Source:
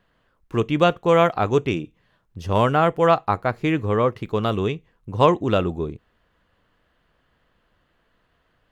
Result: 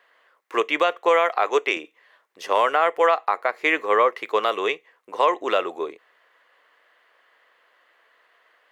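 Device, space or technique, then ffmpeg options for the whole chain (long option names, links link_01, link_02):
laptop speaker: -filter_complex "[0:a]highpass=frequency=450:width=0.5412,highpass=frequency=450:width=1.3066,equalizer=frequency=1100:width_type=o:width=0.24:gain=4,equalizer=frequency=2000:width_type=o:width=0.47:gain=8.5,alimiter=limit=-13dB:level=0:latency=1:release=205,asettb=1/sr,asplit=3[link_01][link_02][link_03];[link_01]atrim=end=1.294[link_04];[link_02]atrim=start=1.29:end=1.77,asetpts=PTS-STARTPTS,afade=type=in:duration=0.004:curve=qsin,afade=type=out:start_time=0.476:duration=0.004:curve=qsin,highpass=260[link_05];[link_03]atrim=start=1.766[link_06];[link_04][link_05]acrossfade=duration=0.004:curve1=hsin:curve2=qsin[link_07];[link_07][link_06]acrossfade=duration=0.004:curve1=qsin:curve2=hsin,volume=5dB"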